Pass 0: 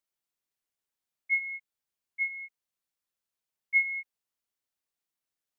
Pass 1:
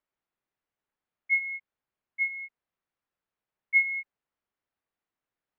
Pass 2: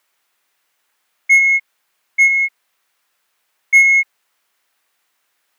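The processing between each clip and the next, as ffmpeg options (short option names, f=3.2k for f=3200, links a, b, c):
-af "lowpass=2k,volume=6dB"
-filter_complex "[0:a]crystalizer=i=8.5:c=0,asplit=2[a][b];[b]highpass=f=720:p=1,volume=20dB,asoftclip=type=tanh:threshold=-4.5dB[c];[a][c]amix=inputs=2:normalize=0,lowpass=f=2.1k:p=1,volume=-6dB,volume=3.5dB"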